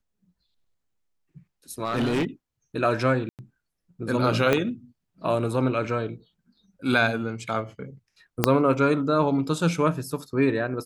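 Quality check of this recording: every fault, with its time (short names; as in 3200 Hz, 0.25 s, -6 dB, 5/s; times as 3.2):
1.84–2.25 clipped -20.5 dBFS
3.29–3.39 gap 98 ms
4.53 pop -8 dBFS
8.44 pop -2 dBFS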